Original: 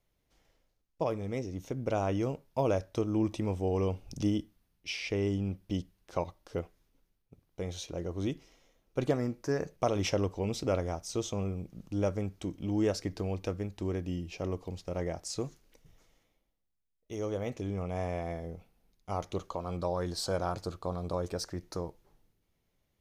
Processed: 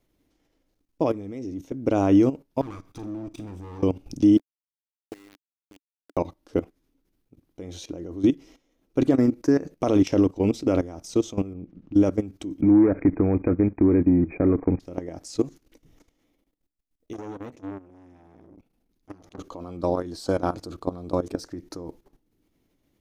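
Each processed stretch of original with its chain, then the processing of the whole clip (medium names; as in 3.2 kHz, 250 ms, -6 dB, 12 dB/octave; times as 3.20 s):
2.61–3.83 s: comb filter that takes the minimum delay 0.85 ms + compression, threshold -42 dBFS + flutter echo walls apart 7.6 m, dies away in 0.23 s
4.37–6.17 s: tilt EQ -3.5 dB/octave + auto-wah 330–1800 Hz, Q 5.4, up, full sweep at -22 dBFS + word length cut 8-bit, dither none
11.53–11.95 s: low-pass 2.5 kHz + compression 2:1, threshold -46 dBFS
12.61–14.80 s: waveshaping leveller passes 2 + compression 5:1, threshold -26 dBFS + brick-wall FIR low-pass 2.5 kHz
17.13–19.39 s: compression 4:1, threshold -37 dBFS + transformer saturation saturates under 1.2 kHz
whole clip: level held to a coarse grid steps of 16 dB; peaking EQ 290 Hz +14 dB 0.68 oct; trim +7.5 dB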